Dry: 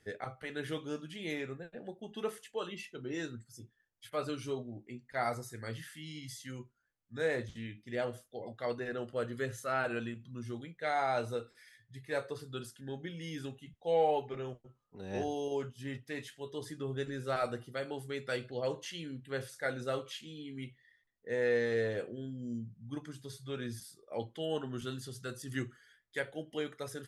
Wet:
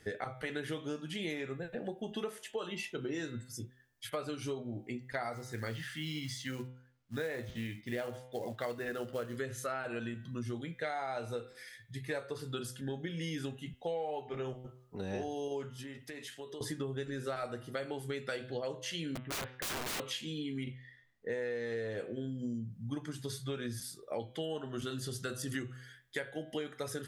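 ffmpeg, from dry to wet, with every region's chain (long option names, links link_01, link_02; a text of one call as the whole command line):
ffmpeg -i in.wav -filter_complex "[0:a]asettb=1/sr,asplit=3[link_01][link_02][link_03];[link_01]atrim=end=5.334[link_04];[link_02]atrim=start=5.33:end=9.37,asetpts=PTS-STARTPTS,afade=type=in:duration=0.004:curve=qsin,afade=type=out:start_time=4.036:duration=0.004:curve=qsin,lowpass=3400,aemphasis=mode=production:type=50fm,acrusher=bits=5:mode=log:mix=0:aa=0.000001[link_05];[link_03]atrim=start=9.366[link_06];[link_04][link_05]acrossfade=duration=0.004:curve1=hsin:curve2=qsin[link_07];[link_07][link_06]acrossfade=duration=0.004:curve1=qsin:curve2=hsin,asettb=1/sr,asplit=3[link_08][link_09][link_10];[link_08]atrim=end=15.764[link_11];[link_09]atrim=start=15.76:end=16.61,asetpts=PTS-STARTPTS,afade=type=in:duration=0.004:curve=qsin,afade=type=out:start_time=0.846:duration=0.004:curve=qsin,highpass=190,acompressor=threshold=-49dB:ratio=16:attack=3.2:release=140:knee=1:detection=peak[link_12];[link_10]atrim=start=16.606[link_13];[link_11][link_12]acrossfade=duration=0.004:curve1=hsin:curve2=qsin[link_14];[link_14][link_13]acrossfade=duration=0.004:curve1=qsin:curve2=hsin,asettb=1/sr,asplit=3[link_15][link_16][link_17];[link_15]atrim=end=19.154[link_18];[link_16]atrim=start=19.15:end=20,asetpts=PTS-STARTPTS,afade=type=in:duration=0.004:curve=qsin,afade=type=out:start_time=0.846:duration=0.004:curve=qsin,lowpass=frequency=2200:width=0.5412,lowpass=frequency=2200:width=1.3066,aeval=exprs='(mod(94.4*val(0)+1,2)-1)/94.4':channel_layout=same[link_19];[link_17]atrim=start=19.996[link_20];[link_18][link_19]acrossfade=duration=0.004:curve1=hsin:curve2=qsin[link_21];[link_21][link_20]acrossfade=duration=0.004:curve1=qsin:curve2=hsin,asettb=1/sr,asplit=3[link_22][link_23][link_24];[link_22]atrim=end=20.634[link_25];[link_23]atrim=start=20.63:end=21.32,asetpts=PTS-STARTPTS,afade=type=in:duration=0.004:curve=qsin,afade=type=out:start_time=0.686:duration=0.004:curve=qsin,highshelf=frequency=5900:gain=-11,asplit=2[link_26][link_27];[link_27]adelay=38,volume=-6.5dB[link_28];[link_26][link_28]amix=inputs=2:normalize=0,atrim=end_sample=30429[link_29];[link_24]atrim=start=21.316[link_30];[link_25][link_29]acrossfade=duration=0.004:curve1=hsin:curve2=qsin[link_31];[link_31][link_30]acrossfade=duration=0.004:curve1=qsin:curve2=hsin,bandreject=frequency=127:width_type=h:width=4,bandreject=frequency=254:width_type=h:width=4,bandreject=frequency=381:width_type=h:width=4,bandreject=frequency=508:width_type=h:width=4,bandreject=frequency=635:width_type=h:width=4,bandreject=frequency=762:width_type=h:width=4,bandreject=frequency=889:width_type=h:width=4,bandreject=frequency=1016:width_type=h:width=4,bandreject=frequency=1143:width_type=h:width=4,bandreject=frequency=1270:width_type=h:width=4,bandreject=frequency=1397:width_type=h:width=4,bandreject=frequency=1524:width_type=h:width=4,bandreject=frequency=1651:width_type=h:width=4,bandreject=frequency=1778:width_type=h:width=4,bandreject=frequency=1905:width_type=h:width=4,bandreject=frequency=2032:width_type=h:width=4,bandreject=frequency=2159:width_type=h:width=4,bandreject=frequency=2286:width_type=h:width=4,bandreject=frequency=2413:width_type=h:width=4,bandreject=frequency=2540:width_type=h:width=4,bandreject=frequency=2667:width_type=h:width=4,bandreject=frequency=2794:width_type=h:width=4,bandreject=frequency=2921:width_type=h:width=4,bandreject=frequency=3048:width_type=h:width=4,bandreject=frequency=3175:width_type=h:width=4,bandreject=frequency=3302:width_type=h:width=4,bandreject=frequency=3429:width_type=h:width=4,bandreject=frequency=3556:width_type=h:width=4,bandreject=frequency=3683:width_type=h:width=4,bandreject=frequency=3810:width_type=h:width=4,bandreject=frequency=3937:width_type=h:width=4,acompressor=threshold=-43dB:ratio=10,volume=8.5dB" out.wav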